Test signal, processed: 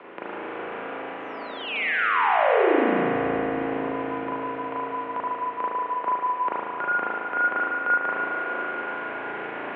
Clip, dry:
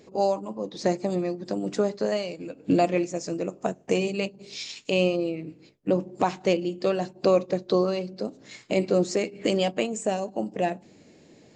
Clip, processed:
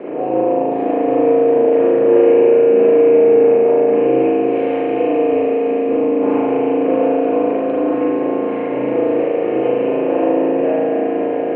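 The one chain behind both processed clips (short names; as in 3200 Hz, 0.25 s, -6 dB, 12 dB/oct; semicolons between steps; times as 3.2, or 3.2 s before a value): per-bin compression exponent 0.4; tilt -4.5 dB/oct; limiter -8 dBFS; reverse; upward compressor, threshold -20 dBFS; reverse; requantised 8-bit, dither none; vibrato 6.1 Hz 8 cents; on a send: swelling echo 93 ms, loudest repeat 5, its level -13 dB; on the sum: spring tank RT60 1.9 s, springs 36 ms, chirp 75 ms, DRR -7.5 dB; mistuned SSB -62 Hz 400–2800 Hz; gain -4.5 dB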